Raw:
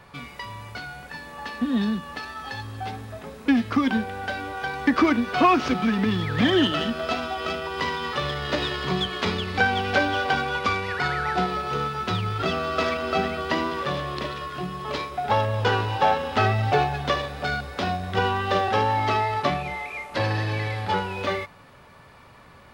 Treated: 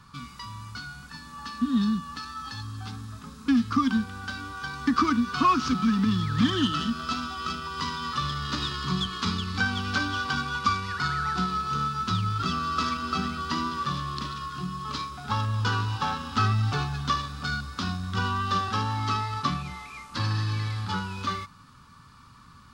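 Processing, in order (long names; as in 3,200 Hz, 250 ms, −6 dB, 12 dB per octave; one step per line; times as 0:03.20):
drawn EQ curve 250 Hz 0 dB, 370 Hz −12 dB, 640 Hz −23 dB, 1,200 Hz +3 dB, 2,000 Hz −12 dB, 4,700 Hz +3 dB, 7,300 Hz +3 dB, 15,000 Hz −6 dB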